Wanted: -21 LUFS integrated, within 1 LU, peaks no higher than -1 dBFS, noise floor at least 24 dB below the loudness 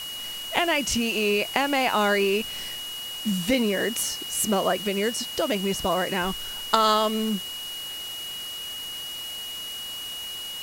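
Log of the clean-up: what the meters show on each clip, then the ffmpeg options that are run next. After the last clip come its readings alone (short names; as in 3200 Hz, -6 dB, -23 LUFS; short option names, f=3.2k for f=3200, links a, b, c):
steady tone 2900 Hz; tone level -33 dBFS; noise floor -35 dBFS; noise floor target -50 dBFS; loudness -25.5 LUFS; peak -3.5 dBFS; loudness target -21.0 LUFS
-> -af "bandreject=f=2.9k:w=30"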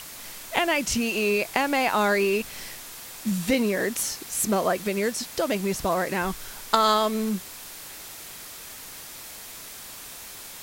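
steady tone none; noise floor -41 dBFS; noise floor target -49 dBFS
-> -af "afftdn=nr=8:nf=-41"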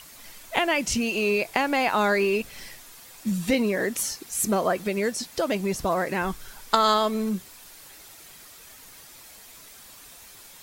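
noise floor -48 dBFS; noise floor target -49 dBFS
-> -af "afftdn=nr=6:nf=-48"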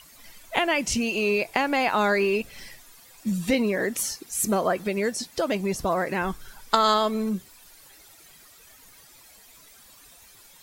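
noise floor -52 dBFS; loudness -25.0 LUFS; peak -4.0 dBFS; loudness target -21.0 LUFS
-> -af "volume=4dB,alimiter=limit=-1dB:level=0:latency=1"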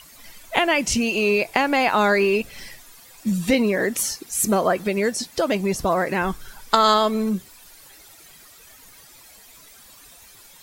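loudness -21.0 LUFS; peak -1.0 dBFS; noise floor -48 dBFS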